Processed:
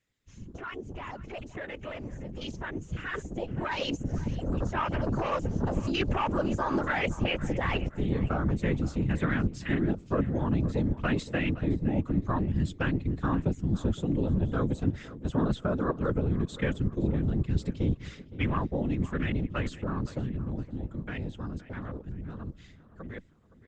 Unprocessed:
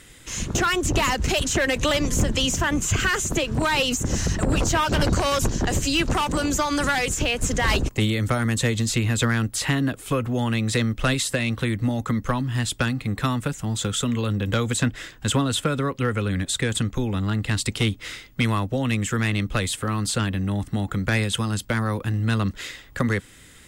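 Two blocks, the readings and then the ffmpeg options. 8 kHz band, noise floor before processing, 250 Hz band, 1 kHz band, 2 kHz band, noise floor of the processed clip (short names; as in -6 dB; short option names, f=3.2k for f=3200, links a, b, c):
under -25 dB, -48 dBFS, -5.0 dB, -8.0 dB, -11.0 dB, -52 dBFS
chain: -filter_complex "[0:a]agate=range=-8dB:threshold=-36dB:ratio=16:detection=peak,afwtdn=0.0501,areverse,acompressor=threshold=-30dB:ratio=12,areverse,afftfilt=real='hypot(re,im)*cos(2*PI*random(0))':imag='hypot(re,im)*sin(2*PI*random(1))':win_size=512:overlap=0.75,dynaudnorm=f=250:g=31:m=12dB,asplit=2[a][b];[b]adelay=516,lowpass=f=4k:p=1,volume=-16dB,asplit=2[c][d];[d]adelay=516,lowpass=f=4k:p=1,volume=0.42,asplit=2[e][f];[f]adelay=516,lowpass=f=4k:p=1,volume=0.42,asplit=2[g][h];[h]adelay=516,lowpass=f=4k:p=1,volume=0.42[i];[c][e][g][i]amix=inputs=4:normalize=0[j];[a][j]amix=inputs=2:normalize=0,aresample=16000,aresample=44100" -ar 48000 -c:a libopus -b:a 32k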